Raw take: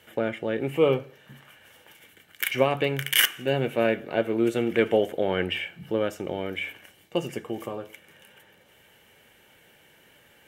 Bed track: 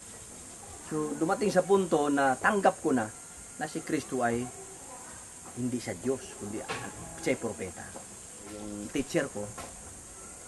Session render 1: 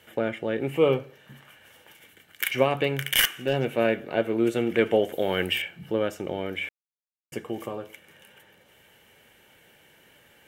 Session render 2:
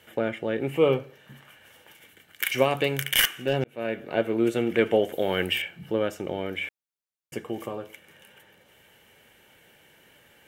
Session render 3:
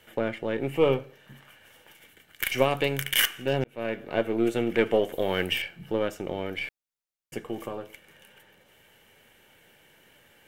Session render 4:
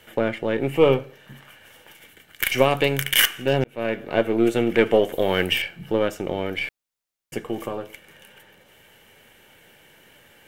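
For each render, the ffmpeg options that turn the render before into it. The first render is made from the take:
ffmpeg -i in.wav -filter_complex "[0:a]asettb=1/sr,asplit=3[link_01][link_02][link_03];[link_01]atrim=end=3.024[link_04];[link_02]atrim=start=3.02:end=3.74,asetpts=PTS-STARTPTS,afade=type=in:duration=0.004:curve=qsin,afade=type=out:start_time=0.716:duration=0.004:curve=qsin,aeval=exprs='clip(val(0),-1,0.158)':channel_layout=same[link_05];[link_03]atrim=start=3.736[link_06];[link_04][link_05]acrossfade=duration=0.004:curve1=hsin:curve2=qsin[link_07];[link_07][link_06]acrossfade=duration=0.004:curve1=qsin:curve2=hsin,asettb=1/sr,asplit=3[link_08][link_09][link_10];[link_08]atrim=end=5.124[link_11];[link_09]atrim=start=5.12:end=5.62,asetpts=PTS-STARTPTS,afade=type=in:duration=0.004:curve=qsin,afade=type=out:start_time=0.496:duration=0.004:curve=qsin,aemphasis=mode=production:type=75fm[link_12];[link_10]atrim=start=5.616[link_13];[link_11][link_12]acrossfade=duration=0.004:curve1=hsin:curve2=qsin[link_14];[link_14][link_13]acrossfade=duration=0.004:curve1=qsin:curve2=hsin,asplit=3[link_15][link_16][link_17];[link_15]atrim=end=6.69,asetpts=PTS-STARTPTS,afade=type=out:start_time=6.686:duration=0.004:curve=hsin[link_18];[link_16]atrim=start=6.69:end=7.32,asetpts=PTS-STARTPTS,volume=0[link_19];[link_17]atrim=start=7.32,asetpts=PTS-STARTPTS,afade=type=in:duration=0.004:curve=hsin[link_20];[link_18][link_19][link_20]concat=n=3:v=0:a=1" out.wav
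ffmpeg -i in.wav -filter_complex "[0:a]asettb=1/sr,asplit=3[link_01][link_02][link_03];[link_01]atrim=end=2.494[link_04];[link_02]atrim=start=2.49:end=3.04,asetpts=PTS-STARTPTS,afade=type=in:duration=0.004:curve=qsin,afade=type=out:start_time=0.546:duration=0.004:curve=qsin,bass=frequency=250:gain=-1,treble=frequency=4000:gain=8[link_05];[link_03]atrim=start=3.036[link_06];[link_04][link_05]acrossfade=duration=0.004:curve1=hsin:curve2=qsin[link_07];[link_07][link_06]acrossfade=duration=0.004:curve1=qsin:curve2=hsin,asplit=2[link_08][link_09];[link_08]atrim=end=3.64,asetpts=PTS-STARTPTS,afade=type=out:start_time=3.636:duration=0.004:curve=hsin[link_10];[link_09]atrim=start=3.64,asetpts=PTS-STARTPTS,afade=type=in:duration=0.5[link_11];[link_10][link_11]concat=n=2:v=0:a=1" out.wav
ffmpeg -i in.wav -af "aeval=exprs='if(lt(val(0),0),0.708*val(0),val(0))':channel_layout=same" out.wav
ffmpeg -i in.wav -af "volume=5.5dB,alimiter=limit=-3dB:level=0:latency=1" out.wav

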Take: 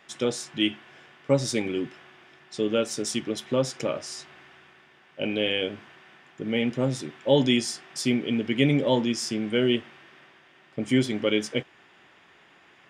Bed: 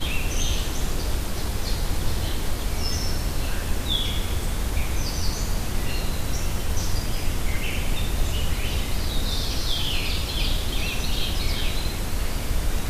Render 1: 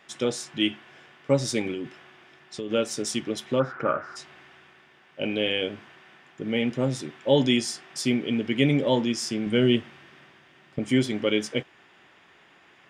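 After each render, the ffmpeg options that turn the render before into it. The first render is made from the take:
ffmpeg -i in.wav -filter_complex "[0:a]asettb=1/sr,asplit=3[link_01][link_02][link_03];[link_01]atrim=end=1.724[link_04];[link_02]atrim=start=1.72:end=2.71,asetpts=PTS-STARTPTS,afade=type=in:duration=0.004:curve=qsin,afade=type=out:start_time=0.986:duration=0.004:curve=qsin,acompressor=threshold=-28dB:ratio=6:attack=3.2:release=140:knee=1:detection=peak[link_05];[link_03]atrim=start=2.706[link_06];[link_04][link_05]acrossfade=duration=0.004:curve1=hsin:curve2=qsin[link_07];[link_07][link_06]acrossfade=duration=0.004:curve1=qsin:curve2=hsin,asplit=3[link_08][link_09][link_10];[link_08]afade=type=out:start_time=3.59:duration=0.02[link_11];[link_09]lowpass=frequency=1400:width_type=q:width=7.5,afade=type=in:start_time=3.59:duration=0.02,afade=type=out:start_time=4.15:duration=0.02[link_12];[link_10]afade=type=in:start_time=4.15:duration=0.02[link_13];[link_11][link_12][link_13]amix=inputs=3:normalize=0,asettb=1/sr,asplit=3[link_14][link_15][link_16];[link_14]atrim=end=9.464[link_17];[link_15]atrim=start=9.46:end=10.79,asetpts=PTS-STARTPTS,afade=type=in:duration=0.004:curve=qsin,afade=type=out:start_time=1.326:duration=0.004:curve=qsin,bass=frequency=250:gain=7,treble=frequency=4000:gain=2[link_18];[link_16]atrim=start=10.786[link_19];[link_17][link_18]acrossfade=duration=0.004:curve1=hsin:curve2=qsin[link_20];[link_20][link_19]acrossfade=duration=0.004:curve1=qsin:curve2=hsin" out.wav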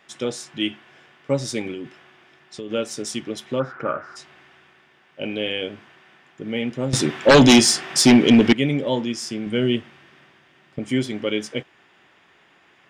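ffmpeg -i in.wav -filter_complex "[0:a]asettb=1/sr,asplit=3[link_01][link_02][link_03];[link_01]atrim=end=6.934[link_04];[link_02]atrim=start=6.93:end=8.53,asetpts=PTS-STARTPTS,afade=type=in:duration=0.004:curve=qsin,afade=type=out:start_time=1.596:duration=0.004:curve=qsin,aeval=exprs='0.473*sin(PI/2*3.55*val(0)/0.473)':channel_layout=same[link_05];[link_03]atrim=start=8.526[link_06];[link_04][link_05]acrossfade=duration=0.004:curve1=hsin:curve2=qsin[link_07];[link_07][link_06]acrossfade=duration=0.004:curve1=qsin:curve2=hsin" out.wav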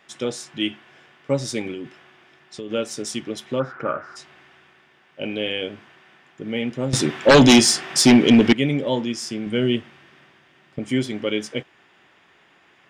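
ffmpeg -i in.wav -af anull out.wav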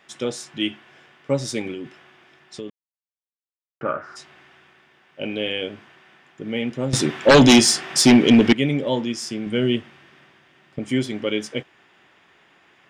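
ffmpeg -i in.wav -filter_complex "[0:a]asplit=3[link_01][link_02][link_03];[link_01]atrim=end=2.7,asetpts=PTS-STARTPTS,afade=type=out:start_time=2.696:duration=0.004:curve=hsin[link_04];[link_02]atrim=start=2.7:end=3.81,asetpts=PTS-STARTPTS,volume=0[link_05];[link_03]atrim=start=3.81,asetpts=PTS-STARTPTS,afade=type=in:duration=0.004:curve=hsin[link_06];[link_04][link_05][link_06]concat=n=3:v=0:a=1" out.wav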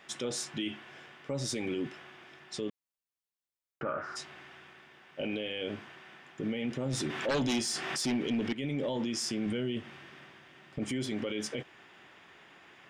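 ffmpeg -i in.wav -af "acompressor=threshold=-23dB:ratio=12,alimiter=level_in=1.5dB:limit=-24dB:level=0:latency=1:release=15,volume=-1.5dB" out.wav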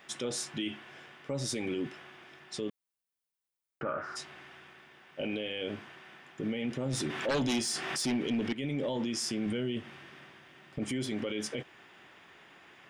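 ffmpeg -i in.wav -af "aexciter=amount=1.3:drive=3.8:freq=9500" out.wav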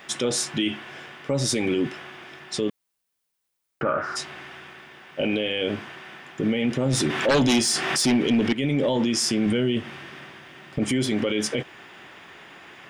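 ffmpeg -i in.wav -af "volume=10.5dB" out.wav

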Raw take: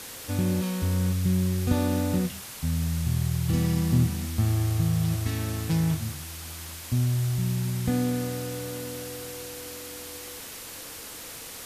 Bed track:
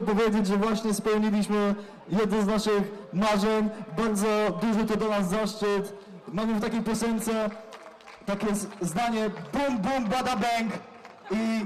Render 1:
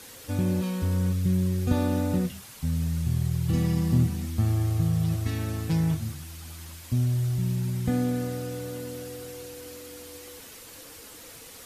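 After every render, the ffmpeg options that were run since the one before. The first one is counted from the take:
ffmpeg -i in.wav -af "afftdn=noise_reduction=7:noise_floor=-41" out.wav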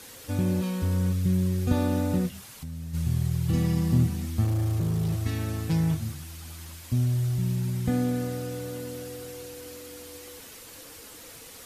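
ffmpeg -i in.wav -filter_complex "[0:a]asplit=3[link_01][link_02][link_03];[link_01]afade=type=out:start_time=2.29:duration=0.02[link_04];[link_02]acompressor=threshold=-36dB:ratio=3:attack=3.2:release=140:knee=1:detection=peak,afade=type=in:start_time=2.29:duration=0.02,afade=type=out:start_time=2.93:duration=0.02[link_05];[link_03]afade=type=in:start_time=2.93:duration=0.02[link_06];[link_04][link_05][link_06]amix=inputs=3:normalize=0,asettb=1/sr,asplit=3[link_07][link_08][link_09];[link_07]atrim=end=4.444[link_10];[link_08]atrim=start=4.44:end=5.22,asetpts=PTS-STARTPTS,afade=type=in:duration=0.004:curve=qsin,afade=type=out:start_time=0.776:duration=0.004:curve=qsin,asoftclip=type=hard:threshold=-22.5dB[link_11];[link_09]atrim=start=5.216[link_12];[link_10][link_11]acrossfade=duration=0.004:curve1=hsin:curve2=qsin[link_13];[link_13][link_12]acrossfade=duration=0.004:curve1=qsin:curve2=hsin" out.wav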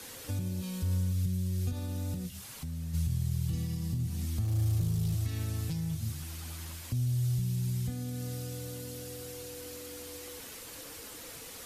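ffmpeg -i in.wav -filter_complex "[0:a]alimiter=limit=-21dB:level=0:latency=1:release=207,acrossover=split=140|3000[link_01][link_02][link_03];[link_02]acompressor=threshold=-43dB:ratio=6[link_04];[link_01][link_04][link_03]amix=inputs=3:normalize=0" out.wav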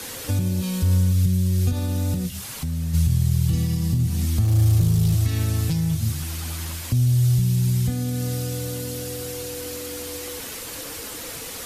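ffmpeg -i in.wav -af "volume=11.5dB" out.wav

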